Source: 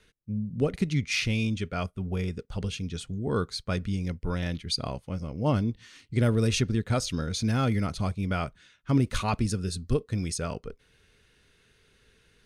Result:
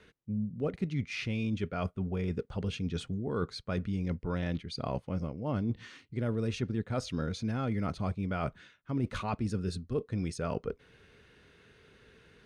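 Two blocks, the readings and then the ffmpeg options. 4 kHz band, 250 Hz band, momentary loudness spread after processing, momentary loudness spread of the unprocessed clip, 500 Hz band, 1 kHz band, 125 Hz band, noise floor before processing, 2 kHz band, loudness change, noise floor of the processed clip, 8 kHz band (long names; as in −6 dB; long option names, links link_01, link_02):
−10.0 dB, −4.5 dB, 3 LU, 9 LU, −4.0 dB, −5.0 dB, −6.0 dB, −64 dBFS, −7.0 dB, −5.5 dB, −64 dBFS, −14.0 dB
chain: -af "highpass=frequency=120:poles=1,areverse,acompressor=threshold=-37dB:ratio=6,areverse,lowpass=frequency=1600:poles=1,volume=7.5dB"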